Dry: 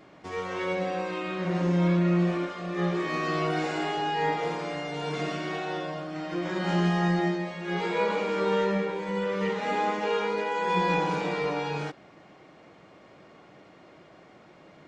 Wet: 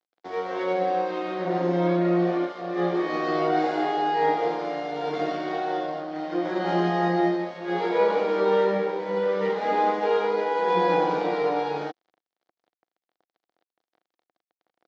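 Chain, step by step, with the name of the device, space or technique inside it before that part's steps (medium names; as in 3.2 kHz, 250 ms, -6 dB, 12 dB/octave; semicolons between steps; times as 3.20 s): blown loudspeaker (crossover distortion -44.5 dBFS; cabinet simulation 220–5100 Hz, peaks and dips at 330 Hz +6 dB, 500 Hz +5 dB, 730 Hz +9 dB, 2.6 kHz -7 dB); trim +1.5 dB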